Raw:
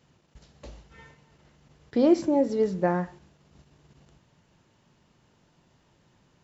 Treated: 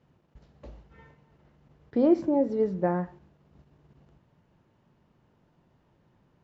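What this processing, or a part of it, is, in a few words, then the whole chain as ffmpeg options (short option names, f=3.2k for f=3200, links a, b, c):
through cloth: -af "lowpass=6.9k,highshelf=f=2.6k:g=-15.5,volume=-1dB"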